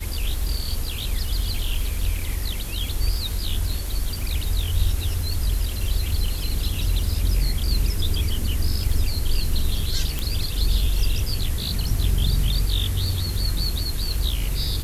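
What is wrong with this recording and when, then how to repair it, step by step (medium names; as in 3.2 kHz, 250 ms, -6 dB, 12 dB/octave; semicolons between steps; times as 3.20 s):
crackle 59 per s -29 dBFS
10.19 s: pop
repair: de-click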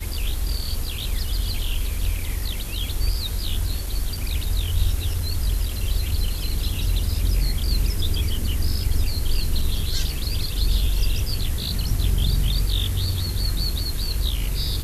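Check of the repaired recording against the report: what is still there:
nothing left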